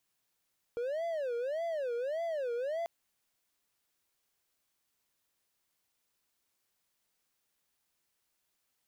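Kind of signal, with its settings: siren wail 470–677 Hz 1.7/s triangle -30 dBFS 2.09 s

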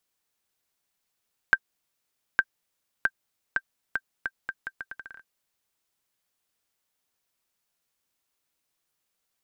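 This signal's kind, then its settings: bouncing ball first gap 0.86 s, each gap 0.77, 1570 Hz, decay 51 ms -6 dBFS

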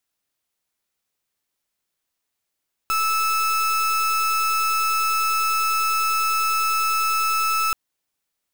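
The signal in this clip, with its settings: pulse 1310 Hz, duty 36% -21 dBFS 4.83 s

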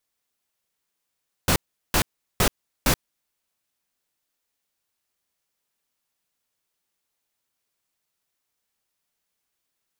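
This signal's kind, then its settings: noise bursts pink, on 0.08 s, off 0.38 s, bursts 4, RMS -19 dBFS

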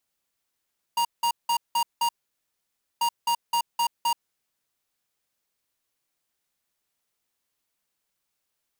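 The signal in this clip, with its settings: beep pattern square 942 Hz, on 0.08 s, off 0.18 s, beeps 5, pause 0.92 s, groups 2, -23 dBFS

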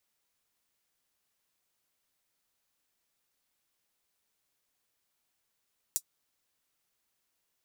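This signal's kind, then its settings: closed hi-hat, high-pass 6700 Hz, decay 0.07 s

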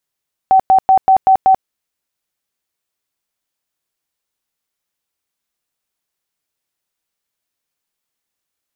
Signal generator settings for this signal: tone bursts 764 Hz, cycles 66, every 0.19 s, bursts 6, -5.5 dBFS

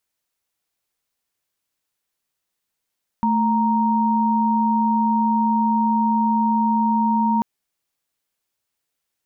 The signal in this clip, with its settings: chord A3/A#5 sine, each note -18.5 dBFS 4.19 s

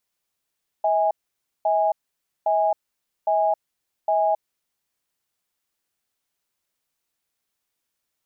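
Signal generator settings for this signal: cadence 643 Hz, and 824 Hz, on 0.27 s, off 0.54 s, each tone -20 dBFS 3.58 s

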